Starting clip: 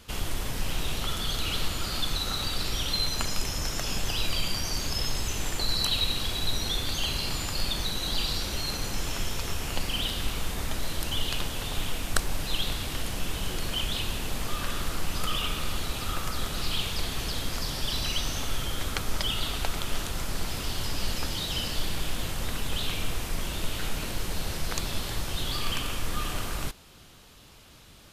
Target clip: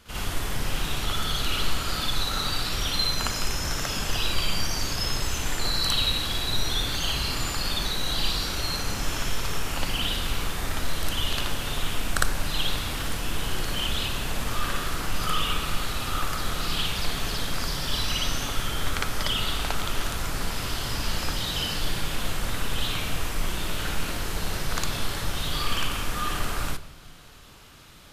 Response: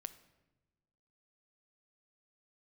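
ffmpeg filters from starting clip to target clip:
-filter_complex "[0:a]equalizer=f=1.4k:w=1.2:g=4.5,asplit=2[a][b];[1:a]atrim=start_sample=2205,adelay=57[c];[b][c]afir=irnorm=-1:irlink=0,volume=8.5dB[d];[a][d]amix=inputs=2:normalize=0,volume=-4dB"

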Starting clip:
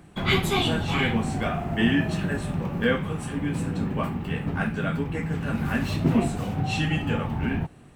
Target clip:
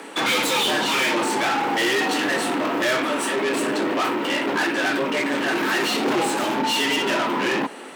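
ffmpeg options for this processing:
-filter_complex "[0:a]asplit=2[a][b];[b]highpass=f=720:p=1,volume=32dB,asoftclip=type=tanh:threshold=-9dB[c];[a][c]amix=inputs=2:normalize=0,lowpass=f=7.7k:p=1,volume=-6dB,afreqshift=120,volume=-5.5dB"

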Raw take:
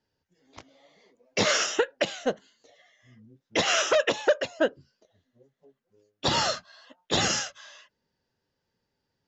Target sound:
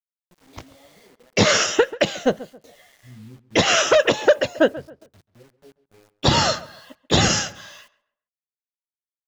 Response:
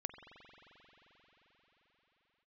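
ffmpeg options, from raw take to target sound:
-filter_complex "[0:a]lowshelf=f=200:g=10,acrusher=bits=9:mix=0:aa=0.000001,asplit=2[a][b];[b]adelay=136,lowpass=f=1.9k:p=1,volume=-17dB,asplit=2[c][d];[d]adelay=136,lowpass=f=1.9k:p=1,volume=0.32,asplit=2[e][f];[f]adelay=136,lowpass=f=1.9k:p=1,volume=0.32[g];[c][e][g]amix=inputs=3:normalize=0[h];[a][h]amix=inputs=2:normalize=0,volume=6dB"

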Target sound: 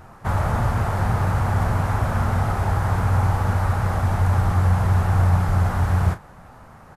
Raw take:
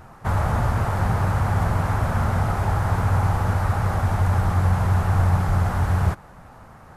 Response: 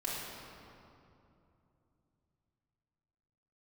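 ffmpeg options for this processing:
-filter_complex "[0:a]asplit=2[a][b];[b]adelay=34,volume=-11dB[c];[a][c]amix=inputs=2:normalize=0"

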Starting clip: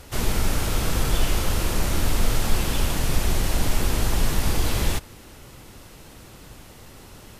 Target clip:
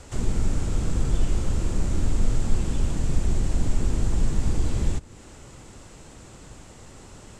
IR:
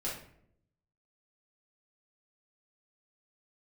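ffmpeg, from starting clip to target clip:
-filter_complex "[0:a]lowpass=f=7.6k:t=q:w=4.6,acrossover=split=380[a][b];[b]acompressor=threshold=-37dB:ratio=3[c];[a][c]amix=inputs=2:normalize=0,highshelf=f=2.6k:g=-9"

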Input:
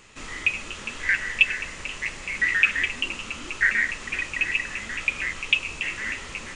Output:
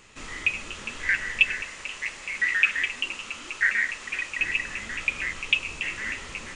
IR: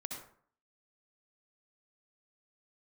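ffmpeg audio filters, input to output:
-filter_complex "[0:a]asettb=1/sr,asplit=3[a][b][c];[a]atrim=end=1.624[d];[b]atrim=start=1.62:end=4.4,asetpts=PTS-STARTPTS,afade=t=in:d=0.004:c=qsin,afade=t=out:st=2.776:d=0.004:c=qsin,lowshelf=f=310:g=-11[e];[c]atrim=start=4.396[f];[d][e]acrossfade=d=0.004:c1=hsin:c2=qsin[g];[g][f]acrossfade=d=0.004:c1=qsin:c2=hsin,volume=-1.5dB"

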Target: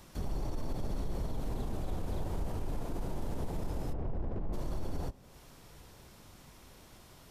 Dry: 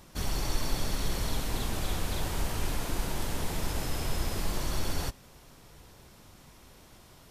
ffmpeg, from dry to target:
-filter_complex "[0:a]acrossover=split=510|880[a][b][c];[c]acompressor=threshold=-54dB:ratio=6[d];[a][b][d]amix=inputs=3:normalize=0,alimiter=level_in=2dB:limit=-24dB:level=0:latency=1:release=29,volume=-2dB,asplit=3[e][f][g];[e]afade=t=out:st=3.92:d=0.02[h];[f]adynamicsmooth=sensitivity=5:basefreq=700,afade=t=in:st=3.92:d=0.02,afade=t=out:st=4.52:d=0.02[i];[g]afade=t=in:st=4.52:d=0.02[j];[h][i][j]amix=inputs=3:normalize=0,volume=-1dB"

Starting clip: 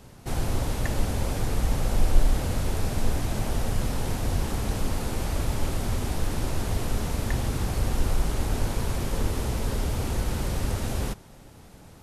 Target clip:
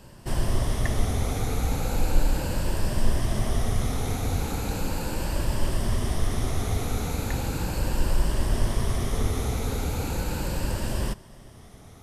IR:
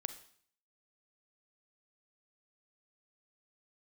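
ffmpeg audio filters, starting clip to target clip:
-af "afftfilt=real='re*pow(10,7/40*sin(2*PI*(1.3*log(max(b,1)*sr/1024/100)/log(2)-(0.37)*(pts-256)/sr)))':imag='im*pow(10,7/40*sin(2*PI*(1.3*log(max(b,1)*sr/1024/100)/log(2)-(0.37)*(pts-256)/sr)))':win_size=1024:overlap=0.75"

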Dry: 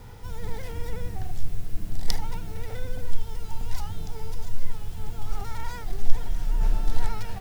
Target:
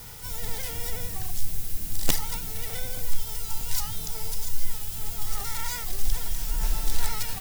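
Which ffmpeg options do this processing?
-filter_complex "[0:a]asplit=2[a][b];[b]asetrate=66075,aresample=44100,atempo=0.66742,volume=-9dB[c];[a][c]amix=inputs=2:normalize=0,crystalizer=i=8:c=0,aeval=exprs='0.501*(abs(mod(val(0)/0.501+3,4)-2)-1)':c=same,volume=-4.5dB"

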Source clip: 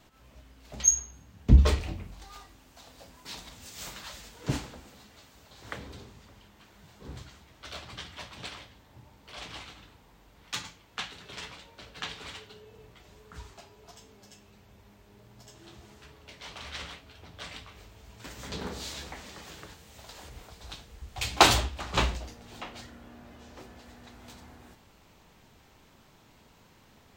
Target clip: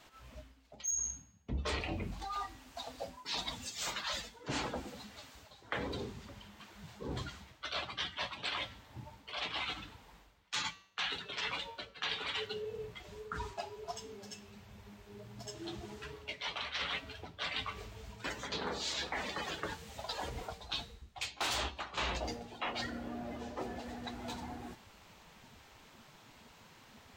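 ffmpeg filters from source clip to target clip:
-filter_complex "[0:a]afftdn=nr=15:nf=-46,asplit=2[a][b];[b]highpass=f=720:p=1,volume=16dB,asoftclip=type=tanh:threshold=-2.5dB[c];[a][c]amix=inputs=2:normalize=0,lowpass=f=7.6k:p=1,volume=-6dB,areverse,acompressor=threshold=-43dB:ratio=8,areverse,bandreject=f=192.5:t=h:w=4,bandreject=f=385:t=h:w=4,bandreject=f=577.5:t=h:w=4,bandreject=f=770:t=h:w=4,bandreject=f=962.5:t=h:w=4,bandreject=f=1.155k:t=h:w=4,bandreject=f=1.3475k:t=h:w=4,bandreject=f=1.54k:t=h:w=4,bandreject=f=1.7325k:t=h:w=4,bandreject=f=1.925k:t=h:w=4,bandreject=f=2.1175k:t=h:w=4,bandreject=f=2.31k:t=h:w=4,bandreject=f=2.5025k:t=h:w=4,bandreject=f=2.695k:t=h:w=4,bandreject=f=2.8875k:t=h:w=4,bandreject=f=3.08k:t=h:w=4,bandreject=f=3.2725k:t=h:w=4,bandreject=f=3.465k:t=h:w=4,bandreject=f=3.6575k:t=h:w=4,bandreject=f=3.85k:t=h:w=4,bandreject=f=4.0425k:t=h:w=4,bandreject=f=4.235k:t=h:w=4,bandreject=f=4.4275k:t=h:w=4,bandreject=f=4.62k:t=h:w=4,bandreject=f=4.8125k:t=h:w=4,bandreject=f=5.005k:t=h:w=4,bandreject=f=5.1975k:t=h:w=4,bandreject=f=5.39k:t=h:w=4,bandreject=f=5.5825k:t=h:w=4,bandreject=f=5.775k:t=h:w=4,bandreject=f=5.9675k:t=h:w=4,bandreject=f=6.16k:t=h:w=4,bandreject=f=6.3525k:t=h:w=4,bandreject=f=6.545k:t=h:w=4,bandreject=f=6.7375k:t=h:w=4,volume=7.5dB"

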